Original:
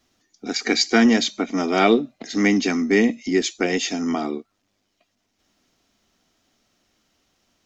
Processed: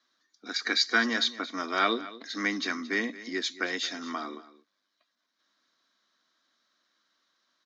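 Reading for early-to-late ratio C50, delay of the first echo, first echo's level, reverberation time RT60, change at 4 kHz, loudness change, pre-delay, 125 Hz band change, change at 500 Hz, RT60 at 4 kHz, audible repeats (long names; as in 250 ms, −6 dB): no reverb audible, 224 ms, −17.0 dB, no reverb audible, −3.5 dB, −8.5 dB, no reverb audible, −19.0 dB, −14.5 dB, no reverb audible, 1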